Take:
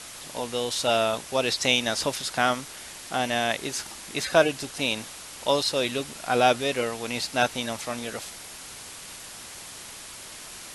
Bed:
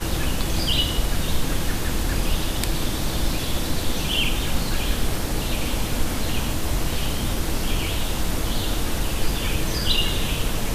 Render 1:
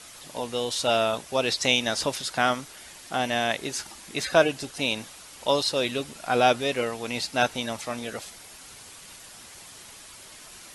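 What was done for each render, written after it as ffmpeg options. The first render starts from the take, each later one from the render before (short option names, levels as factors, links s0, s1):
-af "afftdn=nr=6:nf=-42"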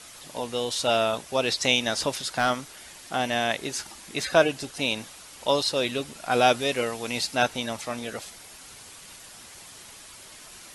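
-filter_complex "[0:a]asettb=1/sr,asplit=3[s0][s1][s2];[s0]atrim=end=2.074[s3];[s1]atrim=start=2.07:end=3.35,asetpts=PTS-STARTPTS,afade=t=in:d=0.004:c=qsin,afade=t=out:st=1.276:d=0.004:c=qsin,volume=4.47,asoftclip=hard,volume=0.224[s4];[s2]atrim=start=3.346[s5];[s3][s4]acrossfade=d=0.004:c1=hsin:c2=qsin[s6];[s6][s5]acrossfade=d=0.004:c1=qsin:c2=hsin,asettb=1/sr,asplit=3[s7][s8][s9];[s7]atrim=end=6.314[s10];[s8]atrim=start=6.31:end=7.35,asetpts=PTS-STARTPTS,afade=t=in:d=0.004:c=qsin,afade=t=out:st=1.036:d=0.004:c=qsin,highshelf=f=4300:g=4.5[s11];[s9]atrim=start=7.346[s12];[s10][s11]acrossfade=d=0.004:c1=hsin:c2=qsin[s13];[s13][s12]acrossfade=d=0.004:c1=qsin:c2=hsin"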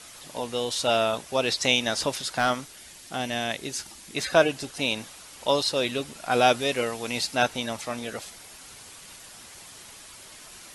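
-filter_complex "[0:a]asettb=1/sr,asplit=3[s0][s1][s2];[s0]atrim=end=2.664[s3];[s1]atrim=start=2.66:end=4.16,asetpts=PTS-STARTPTS,afade=t=in:d=0.004:c=qsin,afade=t=out:st=1.496:d=0.004:c=qsin,equalizer=f=1000:t=o:w=2.6:g=-5.5[s4];[s2]atrim=start=4.156[s5];[s3][s4]acrossfade=d=0.004:c1=hsin:c2=qsin[s6];[s6][s5]acrossfade=d=0.004:c1=qsin:c2=hsin"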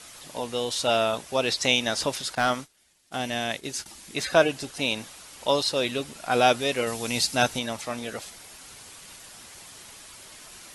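-filter_complex "[0:a]asettb=1/sr,asplit=3[s0][s1][s2];[s0]atrim=end=2.354[s3];[s1]atrim=start=2.35:end=3.86,asetpts=PTS-STARTPTS,afade=t=in:d=0.004:c=qsin,afade=t=out:st=1.506:d=0.004:c=qsin,agate=range=0.0224:threshold=0.0158:ratio=3:release=100:detection=peak[s4];[s2]atrim=start=3.856[s5];[s3][s4]acrossfade=d=0.004:c1=hsin:c2=qsin[s6];[s6][s5]acrossfade=d=0.004:c1=qsin:c2=hsin,asettb=1/sr,asplit=3[s7][s8][s9];[s7]atrim=end=6.874[s10];[s8]atrim=start=6.87:end=7.59,asetpts=PTS-STARTPTS,afade=t=in:d=0.004:c=qsin,afade=t=out:st=0.716:d=0.004:c=qsin,bass=f=250:g=5,treble=f=4000:g=6[s11];[s9]atrim=start=7.586[s12];[s10][s11]acrossfade=d=0.004:c1=hsin:c2=qsin[s13];[s13][s12]acrossfade=d=0.004:c1=qsin:c2=hsin"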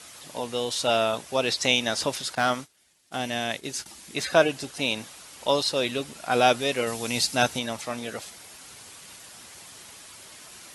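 -af "highpass=66"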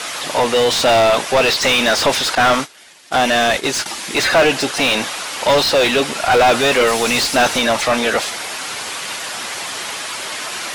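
-filter_complex "[0:a]asplit=2[s0][s1];[s1]highpass=f=720:p=1,volume=44.7,asoftclip=type=tanh:threshold=0.631[s2];[s0][s2]amix=inputs=2:normalize=0,lowpass=f=2500:p=1,volume=0.501"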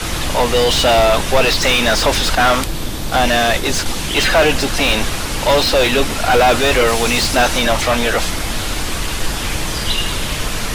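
-filter_complex "[1:a]volume=1.19[s0];[0:a][s0]amix=inputs=2:normalize=0"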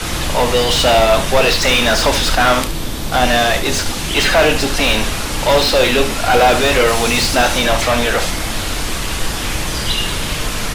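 -filter_complex "[0:a]asplit=2[s0][s1];[s1]adelay=32,volume=0.251[s2];[s0][s2]amix=inputs=2:normalize=0,aecho=1:1:71:0.299"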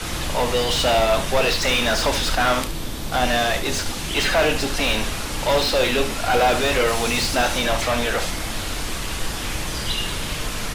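-af "volume=0.473"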